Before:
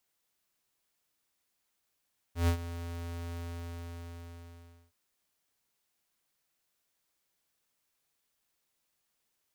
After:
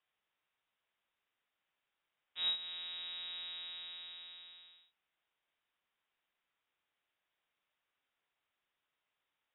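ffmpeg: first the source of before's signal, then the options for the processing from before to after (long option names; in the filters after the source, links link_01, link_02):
-f lavfi -i "aevalsrc='0.0596*(2*lt(mod(85.2*t,1),0.5)-1)':duration=2.57:sample_rate=44100,afade=type=in:duration=0.126,afade=type=out:start_time=0.126:duration=0.091:silence=0.188,afade=type=out:start_time=1.01:duration=1.56"
-filter_complex "[0:a]acrossover=split=180|3000[link_01][link_02][link_03];[link_02]acompressor=threshold=-41dB:ratio=6[link_04];[link_01][link_04][link_03]amix=inputs=3:normalize=0,lowshelf=frequency=250:gain=-7,lowpass=frequency=3300:width_type=q:width=0.5098,lowpass=frequency=3300:width_type=q:width=0.6013,lowpass=frequency=3300:width_type=q:width=0.9,lowpass=frequency=3300:width_type=q:width=2.563,afreqshift=-3900"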